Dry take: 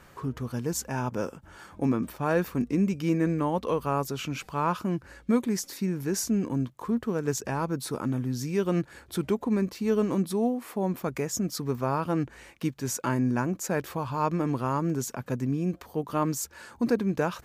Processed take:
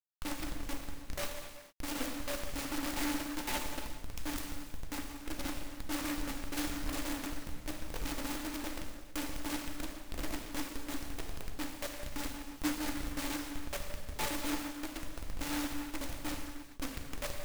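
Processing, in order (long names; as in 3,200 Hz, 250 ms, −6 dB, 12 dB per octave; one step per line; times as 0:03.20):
one-pitch LPC vocoder at 8 kHz 290 Hz
downward compressor 4 to 1, threshold −35 dBFS, peak gain reduction 14 dB
on a send: feedback delay with all-pass diffusion 976 ms, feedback 44%, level −10 dB
on the sum: spectral peaks only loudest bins 2
bit reduction 7 bits
high-shelf EQ 2,900 Hz +10 dB
reverb whose tail is shaped and stops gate 480 ms falling, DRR −0.5 dB
short delay modulated by noise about 1,300 Hz, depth 0.17 ms
level +3 dB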